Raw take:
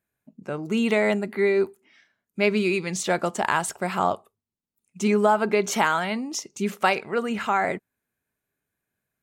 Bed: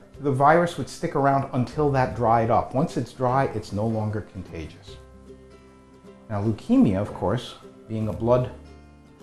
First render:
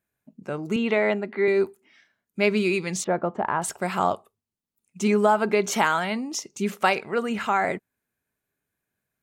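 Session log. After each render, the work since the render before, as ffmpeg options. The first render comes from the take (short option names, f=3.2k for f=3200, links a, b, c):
-filter_complex "[0:a]asettb=1/sr,asplit=3[a][b][c];[a]atrim=end=0.764[d];[b]atrim=start=0.76:end=1.48,asetpts=PTS-STARTPTS,afade=t=in:d=0.004:c=qsin,afade=t=out:st=0.716:d=0.004:c=qsin,highpass=220,lowpass=3.4k[e];[c]atrim=start=1.476[f];[d][e]acrossfade=d=0.004:c1=hsin:c2=qsin[g];[g][f]acrossfade=d=0.004:c1=qsin:c2=hsin,asettb=1/sr,asplit=3[h][i][j];[h]atrim=end=3.044[k];[i]atrim=start=3.04:end=3.62,asetpts=PTS-STARTPTS,afade=t=in:d=0.004:c=qsin,afade=t=out:st=0.576:d=0.004:c=qsin,lowpass=1.2k[l];[j]atrim=start=3.616[m];[k][l]acrossfade=d=0.004:c1=hsin:c2=qsin[n];[n][m]acrossfade=d=0.004:c1=qsin:c2=hsin"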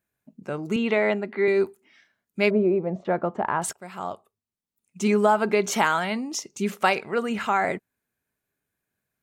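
-filter_complex "[0:a]asettb=1/sr,asplit=3[a][b][c];[a]atrim=end=2.504[d];[b]atrim=start=2.5:end=3.05,asetpts=PTS-STARTPTS,afade=t=in:d=0.004:c=qsin,afade=t=out:st=0.546:d=0.004:c=qsin,lowpass=f=650:t=q:w=4.9[e];[c]atrim=start=3.046[f];[d][e]acrossfade=d=0.004:c1=hsin:c2=qsin[g];[g][f]acrossfade=d=0.004:c1=qsin:c2=hsin,asplit=2[h][i];[h]atrim=end=3.73,asetpts=PTS-STARTPTS,afade=t=out:st=3.726:d=0.004:c=hsin:silence=0.141254[j];[i]atrim=start=3.73,asetpts=PTS-STARTPTS,afade=t=in:d=1.37:silence=0.141254[k];[j][k]concat=n=2:v=0:a=1"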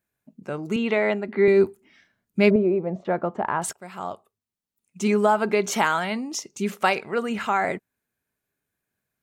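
-filter_complex "[0:a]asettb=1/sr,asplit=3[a][b][c];[a]atrim=end=1.284[d];[b]atrim=start=1.28:end=2.56,asetpts=PTS-STARTPTS,afade=t=in:d=0.004:c=qsin,afade=t=out:st=1.276:d=0.004:c=qsin,lowshelf=f=280:g=12[e];[c]atrim=start=2.556[f];[d][e]acrossfade=d=0.004:c1=hsin:c2=qsin[g];[g][f]acrossfade=d=0.004:c1=qsin:c2=hsin"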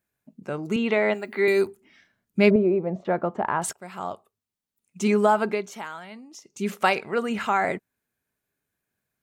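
-filter_complex "[0:a]asplit=3[a][b][c];[a]afade=t=out:st=1.13:d=0.02[d];[b]aemphasis=mode=production:type=riaa,afade=t=in:st=1.13:d=0.02,afade=t=out:st=1.65:d=0.02[e];[c]afade=t=in:st=1.65:d=0.02[f];[d][e][f]amix=inputs=3:normalize=0,asplit=3[g][h][i];[g]atrim=end=5.69,asetpts=PTS-STARTPTS,afade=t=out:st=5.4:d=0.29:silence=0.188365[j];[h]atrim=start=5.69:end=6.41,asetpts=PTS-STARTPTS,volume=-14.5dB[k];[i]atrim=start=6.41,asetpts=PTS-STARTPTS,afade=t=in:d=0.29:silence=0.188365[l];[j][k][l]concat=n=3:v=0:a=1"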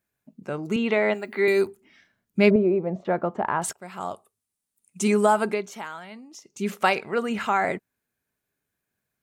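-filter_complex "[0:a]asettb=1/sr,asplit=3[a][b][c];[a]atrim=end=4.004[d];[b]atrim=start=4:end=5.54,asetpts=PTS-STARTPTS,afade=t=in:d=0.004:c=qsin,afade=t=out:st=1.536:d=0.004:c=qsin,equalizer=f=9.5k:t=o:w=0.77:g=12.5[e];[c]atrim=start=5.536[f];[d][e]acrossfade=d=0.004:c1=hsin:c2=qsin[g];[g][f]acrossfade=d=0.004:c1=qsin:c2=hsin"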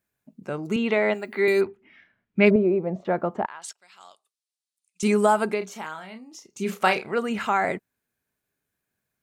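-filter_complex "[0:a]asplit=3[a][b][c];[a]afade=t=out:st=1.6:d=0.02[d];[b]lowpass=f=2.4k:t=q:w=1.5,afade=t=in:st=1.6:d=0.02,afade=t=out:st=2.45:d=0.02[e];[c]afade=t=in:st=2.45:d=0.02[f];[d][e][f]amix=inputs=3:normalize=0,asettb=1/sr,asplit=3[g][h][i];[g]atrim=end=3.464[j];[h]atrim=start=3.46:end=5.03,asetpts=PTS-STARTPTS,afade=t=in:d=0.004:c=qsin,afade=t=out:st=1.566:d=0.004:c=qsin,bandpass=f=4.4k:t=q:w=1.5[k];[i]atrim=start=5.026[l];[j][k]acrossfade=d=0.004:c1=hsin:c2=qsin[m];[m][l]acrossfade=d=0.004:c1=qsin:c2=hsin,asettb=1/sr,asplit=3[n][o][p];[n]atrim=end=5.584[q];[o]atrim=start=5.58:end=7.13,asetpts=PTS-STARTPTS,afade=t=in:d=0.004:c=qsin,afade=t=out:st=1.546:d=0.004:c=qsin,asplit=2[r][s];[s]adelay=32,volume=-8dB[t];[r][t]amix=inputs=2:normalize=0,atrim=end_sample=68355[u];[p]atrim=start=7.126[v];[q][u]acrossfade=d=0.004:c1=hsin:c2=qsin[w];[w][v]acrossfade=d=0.004:c1=qsin:c2=hsin"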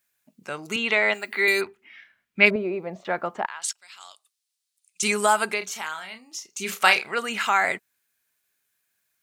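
-af "tiltshelf=f=860:g=-10"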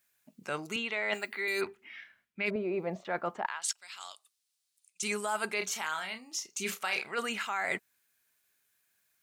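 -af "alimiter=limit=-9.5dB:level=0:latency=1:release=340,areverse,acompressor=threshold=-29dB:ratio=12,areverse"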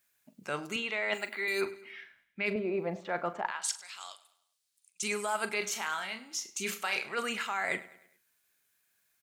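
-filter_complex "[0:a]asplit=2[a][b];[b]adelay=41,volume=-13dB[c];[a][c]amix=inputs=2:normalize=0,aecho=1:1:102|204|306|408:0.119|0.0547|0.0251|0.0116"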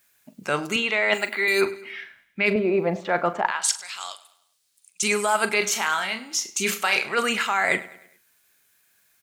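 -af "volume=10.5dB"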